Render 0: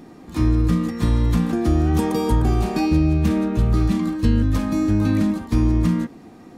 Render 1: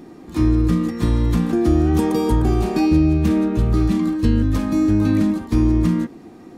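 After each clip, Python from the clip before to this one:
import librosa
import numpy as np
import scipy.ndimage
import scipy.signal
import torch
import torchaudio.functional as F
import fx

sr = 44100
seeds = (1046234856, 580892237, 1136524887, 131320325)

y = fx.peak_eq(x, sr, hz=350.0, db=5.5, octaves=0.52)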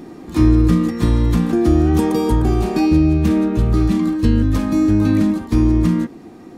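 y = fx.rider(x, sr, range_db=4, speed_s=2.0)
y = F.gain(torch.from_numpy(y), 2.0).numpy()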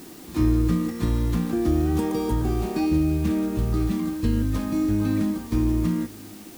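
y = fx.dmg_noise_colour(x, sr, seeds[0], colour='white', level_db=-40.0)
y = y + 10.0 ** (-21.0 / 20.0) * np.pad(y, (int(1119 * sr / 1000.0), 0))[:len(y)]
y = F.gain(torch.from_numpy(y), -8.0).numpy()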